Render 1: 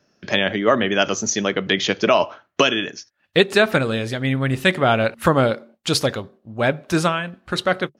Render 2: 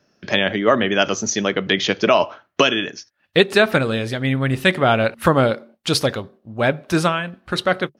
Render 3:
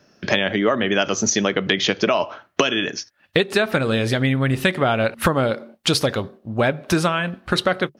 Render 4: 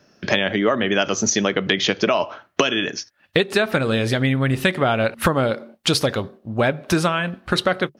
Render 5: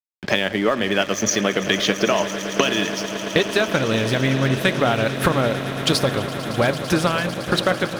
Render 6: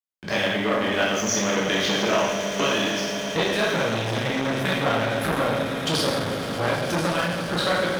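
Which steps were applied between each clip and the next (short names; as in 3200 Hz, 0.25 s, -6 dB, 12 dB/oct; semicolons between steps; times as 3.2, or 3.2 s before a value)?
bell 7100 Hz -4 dB 0.34 oct; gain +1 dB
compressor, threshold -22 dBFS, peak gain reduction 13 dB; gain +6.5 dB
nothing audible
on a send: swelling echo 0.112 s, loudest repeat 8, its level -16 dB; on the sum: crossover distortion -35 dBFS
reverb RT60 1.0 s, pre-delay 13 ms, DRR -5 dB; core saturation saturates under 1200 Hz; gain -6.5 dB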